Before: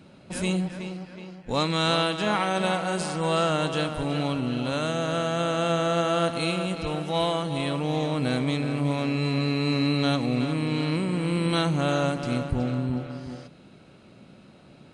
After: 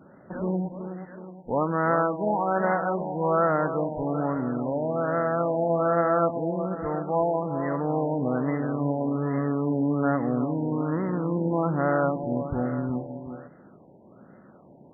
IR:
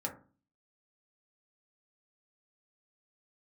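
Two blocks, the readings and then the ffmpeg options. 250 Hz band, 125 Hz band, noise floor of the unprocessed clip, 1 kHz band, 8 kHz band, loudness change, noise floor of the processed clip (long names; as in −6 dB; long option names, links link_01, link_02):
−0.5 dB, −3.0 dB, −51 dBFS, +2.0 dB, below −40 dB, 0.0 dB, −52 dBFS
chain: -af "lowshelf=frequency=150:gain=-12,afftfilt=real='re*lt(b*sr/1024,960*pow(2100/960,0.5+0.5*sin(2*PI*1.2*pts/sr)))':imag='im*lt(b*sr/1024,960*pow(2100/960,0.5+0.5*sin(2*PI*1.2*pts/sr)))':win_size=1024:overlap=0.75,volume=3dB"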